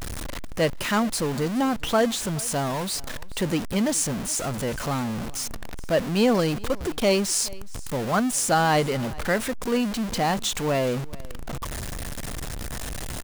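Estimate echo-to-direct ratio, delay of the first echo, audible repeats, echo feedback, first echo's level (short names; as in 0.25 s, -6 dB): -22.0 dB, 0.42 s, 1, no steady repeat, -22.0 dB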